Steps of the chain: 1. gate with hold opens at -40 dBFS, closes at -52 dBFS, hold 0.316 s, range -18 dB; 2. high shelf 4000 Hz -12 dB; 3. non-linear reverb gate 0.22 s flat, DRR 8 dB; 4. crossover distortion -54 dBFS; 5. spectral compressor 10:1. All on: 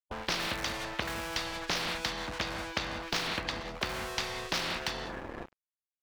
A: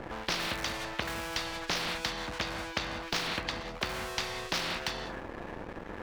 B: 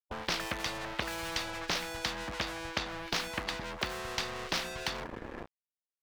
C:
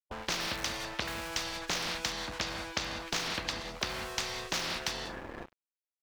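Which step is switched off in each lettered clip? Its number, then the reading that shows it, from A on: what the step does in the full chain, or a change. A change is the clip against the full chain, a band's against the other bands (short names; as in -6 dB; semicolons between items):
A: 1, momentary loudness spread change +3 LU; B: 3, loudness change -1.5 LU; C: 2, 8 kHz band +5.5 dB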